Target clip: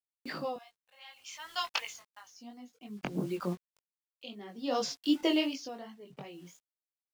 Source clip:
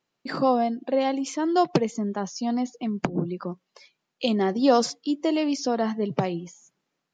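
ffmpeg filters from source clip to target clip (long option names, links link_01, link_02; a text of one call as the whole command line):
ffmpeg -i in.wav -filter_complex "[0:a]asettb=1/sr,asplit=3[link_01][link_02][link_03];[link_01]atrim=end=0.564[link_04];[link_02]atrim=start=0.56:end=2.3,asetpts=PTS-STARTPTS,afade=type=in:duration=0.004:curve=qsin,afade=type=out:start_time=1.736:duration=0.004:curve=qsin,highpass=frequency=1000:width=0.5412,highpass=frequency=1000:width=1.3066[link_05];[link_03]atrim=start=2.296[link_06];[link_04][link_05]acrossfade=duration=0.004:curve1=hsin:curve2=qsin[link_07];[link_07][link_06]acrossfade=duration=0.004:curve1=qsin:curve2=hsin,agate=range=-14dB:threshold=-47dB:ratio=16:detection=peak,equalizer=frequency=2900:width_type=o:width=0.98:gain=9.5,acrusher=bits=7:mix=0:aa=0.000001,flanger=delay=19:depth=3.4:speed=2.7,aeval=exprs='val(0)*pow(10,-21*(0.5-0.5*cos(2*PI*0.58*n/s))/20)':channel_layout=same" out.wav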